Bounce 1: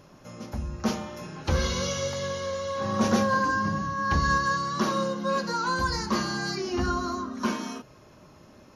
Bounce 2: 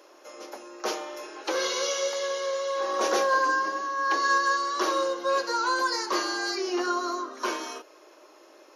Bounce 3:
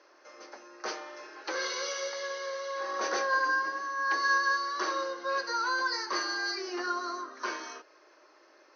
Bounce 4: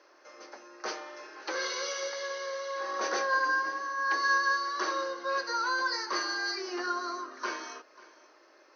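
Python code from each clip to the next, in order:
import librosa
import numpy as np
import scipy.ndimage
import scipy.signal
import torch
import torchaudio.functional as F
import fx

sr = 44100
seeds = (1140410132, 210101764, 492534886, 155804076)

y1 = scipy.signal.sosfilt(scipy.signal.cheby1(5, 1.0, 320.0, 'highpass', fs=sr, output='sos'), x)
y1 = y1 * 10.0 ** (2.5 / 20.0)
y2 = scipy.signal.sosfilt(scipy.signal.cheby1(6, 9, 6300.0, 'lowpass', fs=sr, output='sos'), y1)
y3 = y2 + 10.0 ** (-20.5 / 20.0) * np.pad(y2, (int(542 * sr / 1000.0), 0))[:len(y2)]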